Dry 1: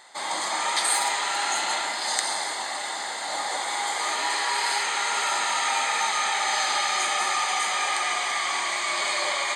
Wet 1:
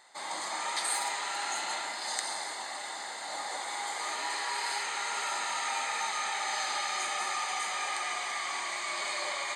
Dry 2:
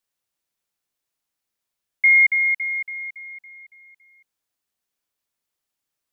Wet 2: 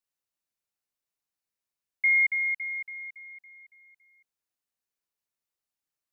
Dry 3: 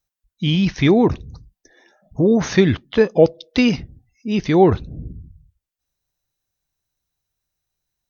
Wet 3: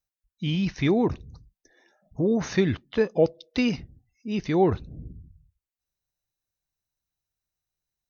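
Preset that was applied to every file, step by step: band-stop 3.3 kHz, Q 16; trim -8 dB

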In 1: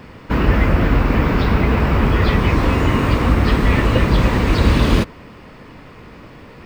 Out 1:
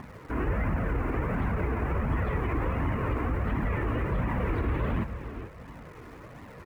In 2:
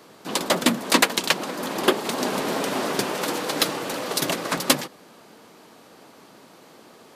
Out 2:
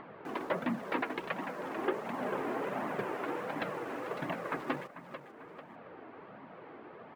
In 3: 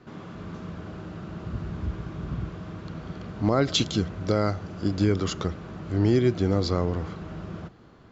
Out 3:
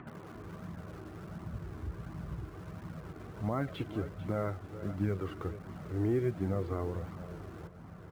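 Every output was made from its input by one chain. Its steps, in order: low-pass 2.2 kHz 24 dB/octave; in parallel at -12 dB: bit crusher 6-bit; on the sum: high-pass 41 Hz 6 dB/octave; on a send: feedback delay 443 ms, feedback 23%, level -14.5 dB; on the sum: upward compressor, threshold -27 dBFS; peak limiter -9.5 dBFS; flange 1.4 Hz, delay 0.9 ms, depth 2.1 ms, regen -32%; trim -7.5 dB

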